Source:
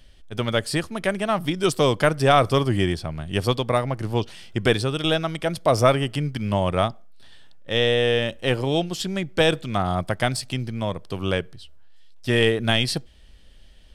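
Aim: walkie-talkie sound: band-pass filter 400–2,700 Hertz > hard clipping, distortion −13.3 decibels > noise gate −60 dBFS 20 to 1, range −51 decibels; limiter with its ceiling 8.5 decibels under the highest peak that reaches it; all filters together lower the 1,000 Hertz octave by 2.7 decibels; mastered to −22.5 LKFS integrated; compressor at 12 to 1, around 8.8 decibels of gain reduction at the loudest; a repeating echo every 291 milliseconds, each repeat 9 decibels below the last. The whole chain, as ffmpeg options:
ffmpeg -i in.wav -af "equalizer=frequency=1000:width_type=o:gain=-3.5,acompressor=threshold=-22dB:ratio=12,alimiter=limit=-20.5dB:level=0:latency=1,highpass=400,lowpass=2700,aecho=1:1:291|582|873|1164:0.355|0.124|0.0435|0.0152,asoftclip=type=hard:threshold=-28.5dB,agate=range=-51dB:threshold=-60dB:ratio=20,volume=14.5dB" out.wav

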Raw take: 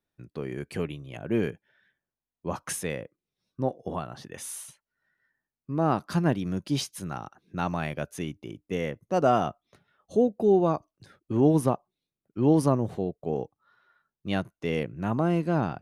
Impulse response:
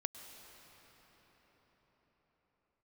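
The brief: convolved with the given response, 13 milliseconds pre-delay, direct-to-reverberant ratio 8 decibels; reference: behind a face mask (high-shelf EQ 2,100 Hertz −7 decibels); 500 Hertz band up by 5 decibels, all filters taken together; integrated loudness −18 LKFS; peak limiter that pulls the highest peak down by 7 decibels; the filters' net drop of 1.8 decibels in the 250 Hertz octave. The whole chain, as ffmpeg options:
-filter_complex "[0:a]equalizer=frequency=250:width_type=o:gain=-6,equalizer=frequency=500:width_type=o:gain=8.5,alimiter=limit=-13.5dB:level=0:latency=1,asplit=2[link_01][link_02];[1:a]atrim=start_sample=2205,adelay=13[link_03];[link_02][link_03]afir=irnorm=-1:irlink=0,volume=-7dB[link_04];[link_01][link_04]amix=inputs=2:normalize=0,highshelf=frequency=2100:gain=-7,volume=9.5dB"

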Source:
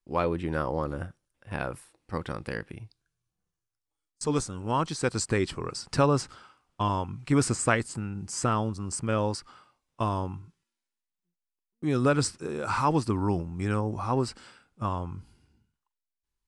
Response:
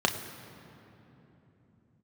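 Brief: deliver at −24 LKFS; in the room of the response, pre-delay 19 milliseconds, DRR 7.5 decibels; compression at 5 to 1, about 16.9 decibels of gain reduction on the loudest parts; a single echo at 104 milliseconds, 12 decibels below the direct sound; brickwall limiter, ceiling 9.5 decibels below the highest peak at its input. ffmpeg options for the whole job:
-filter_complex "[0:a]acompressor=threshold=-38dB:ratio=5,alimiter=level_in=8.5dB:limit=-24dB:level=0:latency=1,volume=-8.5dB,aecho=1:1:104:0.251,asplit=2[link_01][link_02];[1:a]atrim=start_sample=2205,adelay=19[link_03];[link_02][link_03]afir=irnorm=-1:irlink=0,volume=-19.5dB[link_04];[link_01][link_04]amix=inputs=2:normalize=0,volume=18.5dB"

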